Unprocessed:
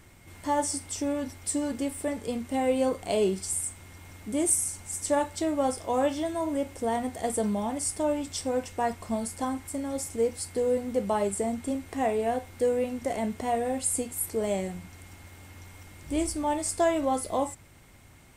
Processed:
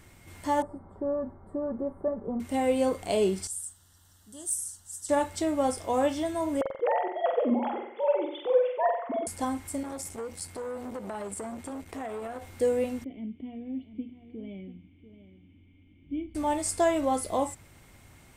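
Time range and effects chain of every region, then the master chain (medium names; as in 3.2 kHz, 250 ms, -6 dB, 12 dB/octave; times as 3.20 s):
0.62–2.40 s: inverse Chebyshev low-pass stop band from 2.4 kHz + comb 5.2 ms, depth 51%
3.47–5.09 s: Butterworth band-stop 2.3 kHz, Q 1.9 + amplifier tone stack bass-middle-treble 5-5-5 + hard clipper -19 dBFS
6.61–9.27 s: formants replaced by sine waves + peaking EQ 1.6 kHz -4 dB 0.35 oct + flutter echo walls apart 7.9 m, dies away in 0.64 s
9.83–12.42 s: compression 12:1, threshold -30 dBFS + transformer saturation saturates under 1 kHz
13.04–16.35 s: cascade formant filter i + delay 690 ms -13 dB
whole clip: none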